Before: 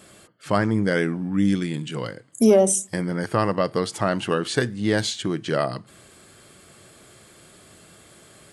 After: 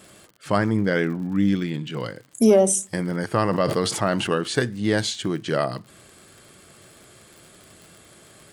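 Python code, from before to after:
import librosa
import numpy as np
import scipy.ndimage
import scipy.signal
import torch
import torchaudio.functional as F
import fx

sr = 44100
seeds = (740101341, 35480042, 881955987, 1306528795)

y = fx.lowpass(x, sr, hz=4900.0, slope=12, at=(0.77, 2.0))
y = fx.dmg_crackle(y, sr, seeds[0], per_s=70.0, level_db=-37.0)
y = fx.sustainer(y, sr, db_per_s=46.0, at=(3.43, 4.27))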